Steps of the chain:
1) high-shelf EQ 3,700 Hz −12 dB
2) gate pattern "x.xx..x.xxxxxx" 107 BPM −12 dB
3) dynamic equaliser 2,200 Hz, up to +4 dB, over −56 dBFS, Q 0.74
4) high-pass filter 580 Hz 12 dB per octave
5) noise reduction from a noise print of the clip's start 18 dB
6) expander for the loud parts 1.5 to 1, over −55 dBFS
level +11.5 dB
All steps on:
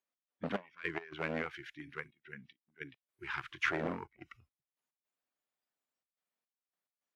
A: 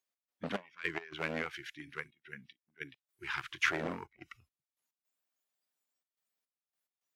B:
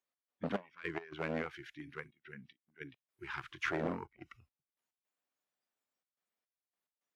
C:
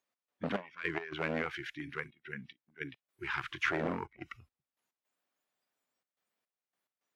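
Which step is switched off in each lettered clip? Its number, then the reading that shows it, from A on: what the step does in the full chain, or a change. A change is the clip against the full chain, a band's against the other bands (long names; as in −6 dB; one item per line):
1, 8 kHz band +9.0 dB
3, 2 kHz band −3.0 dB
6, change in momentary loudness spread −5 LU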